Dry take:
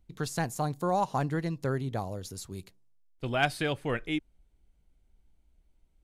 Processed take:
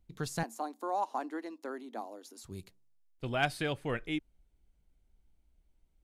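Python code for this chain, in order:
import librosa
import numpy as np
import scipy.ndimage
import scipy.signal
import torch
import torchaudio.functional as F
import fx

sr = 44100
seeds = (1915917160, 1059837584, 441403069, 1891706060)

y = fx.cheby_ripple_highpass(x, sr, hz=220.0, ripple_db=6, at=(0.43, 2.44))
y = y * librosa.db_to_amplitude(-3.5)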